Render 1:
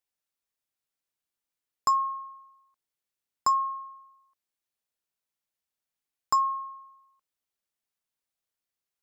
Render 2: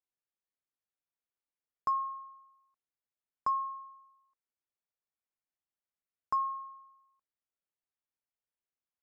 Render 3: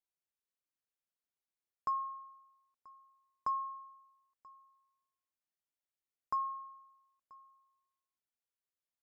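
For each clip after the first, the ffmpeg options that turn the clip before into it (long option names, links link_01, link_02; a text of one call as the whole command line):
ffmpeg -i in.wav -af "lowpass=2100,volume=-6.5dB" out.wav
ffmpeg -i in.wav -af "aecho=1:1:984:0.0668,volume=-4dB" out.wav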